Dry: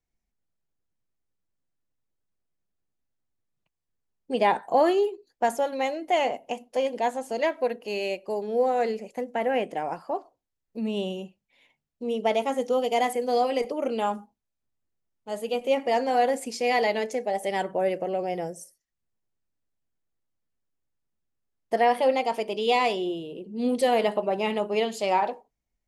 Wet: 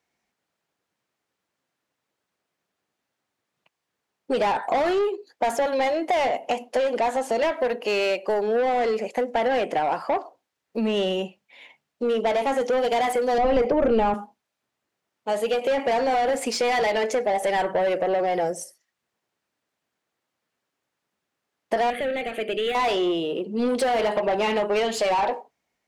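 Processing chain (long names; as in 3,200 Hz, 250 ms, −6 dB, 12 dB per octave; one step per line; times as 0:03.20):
high-pass filter 87 Hz
mid-hump overdrive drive 23 dB, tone 2,700 Hz, clips at −9.5 dBFS
downward compressor, threshold −20 dBFS, peak gain reduction 6.5 dB
0:13.38–0:14.14: RIAA equalisation playback
0:21.90–0:22.75: phaser with its sweep stopped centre 2,300 Hz, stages 4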